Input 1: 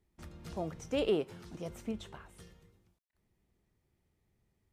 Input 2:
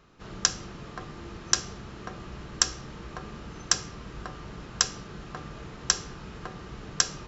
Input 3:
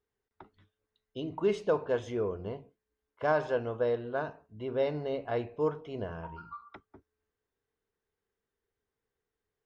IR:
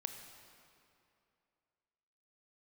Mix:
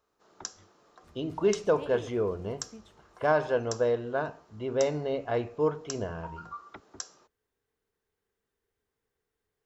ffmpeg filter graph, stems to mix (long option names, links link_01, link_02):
-filter_complex "[0:a]adelay=850,volume=-10.5dB[link_01];[1:a]highpass=530,equalizer=frequency=2500:width_type=o:width=1.8:gain=-12.5,volume=-10.5dB[link_02];[2:a]volume=3dB[link_03];[link_01][link_02][link_03]amix=inputs=3:normalize=0"